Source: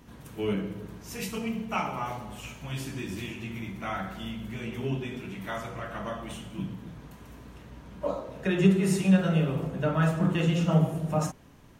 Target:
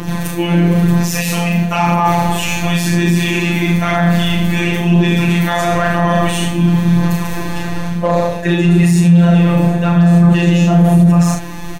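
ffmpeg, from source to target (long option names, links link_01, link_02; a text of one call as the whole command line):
ffmpeg -i in.wav -filter_complex "[0:a]areverse,acompressor=threshold=-36dB:ratio=6,areverse,asoftclip=type=hard:threshold=-32dB,afftfilt=real='hypot(re,im)*cos(PI*b)':imag='0':win_size=1024:overlap=0.75,aphaser=in_gain=1:out_gain=1:delay=3.5:decay=0.38:speed=0.99:type=sinusoidal,asplit=2[link_01][link_02];[link_02]aecho=0:1:36|75:0.596|0.299[link_03];[link_01][link_03]amix=inputs=2:normalize=0,alimiter=level_in=30.5dB:limit=-1dB:release=50:level=0:latency=1,volume=-1dB" out.wav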